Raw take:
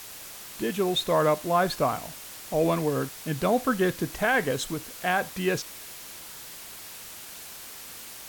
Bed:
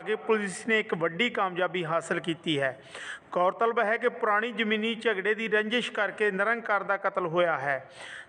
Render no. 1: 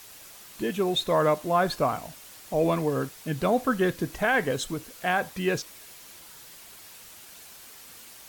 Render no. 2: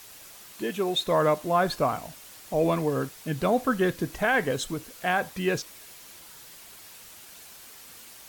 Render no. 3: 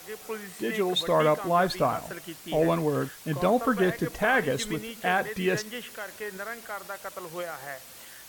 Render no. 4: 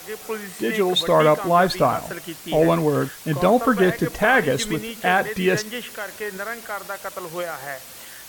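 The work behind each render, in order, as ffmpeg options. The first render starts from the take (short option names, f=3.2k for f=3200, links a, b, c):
-af "afftdn=nr=6:nf=-43"
-filter_complex "[0:a]asettb=1/sr,asplit=3[a][b][c];[a]atrim=end=0.534[d];[b]atrim=start=0.53:end=1.07,asetpts=PTS-STARTPTS,afade=t=in:d=0.004:c=qsin,afade=t=out:st=0.536:d=0.004:c=qsin,highpass=f=230:p=1[e];[c]atrim=start=1.066[f];[d][e]acrossfade=d=0.004:c1=hsin:c2=qsin[g];[g][f]acrossfade=d=0.004:c1=qsin:c2=hsin"
-filter_complex "[1:a]volume=-10.5dB[a];[0:a][a]amix=inputs=2:normalize=0"
-af "volume=6.5dB"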